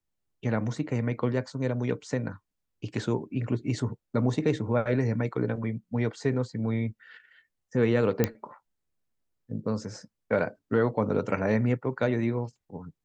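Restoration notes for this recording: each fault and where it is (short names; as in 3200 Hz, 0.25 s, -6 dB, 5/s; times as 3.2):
8.24 pop -9 dBFS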